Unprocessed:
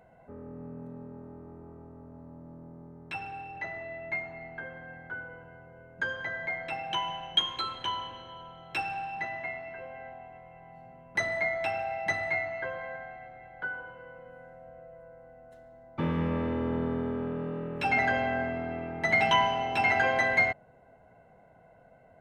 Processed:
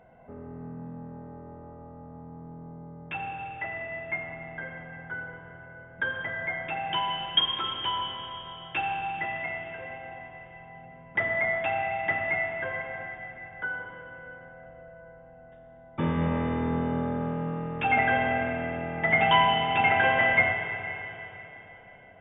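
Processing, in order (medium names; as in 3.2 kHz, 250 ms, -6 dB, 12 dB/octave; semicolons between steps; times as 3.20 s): brick-wall FIR low-pass 3.7 kHz; Schroeder reverb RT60 3.6 s, combs from 29 ms, DRR 3 dB; trim +2 dB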